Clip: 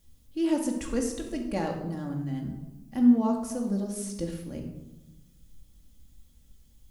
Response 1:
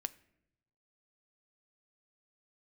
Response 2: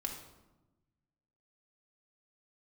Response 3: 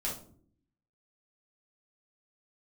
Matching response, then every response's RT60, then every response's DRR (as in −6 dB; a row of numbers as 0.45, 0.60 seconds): 2; non-exponential decay, 1.1 s, non-exponential decay; 13.0, 0.5, −6.0 decibels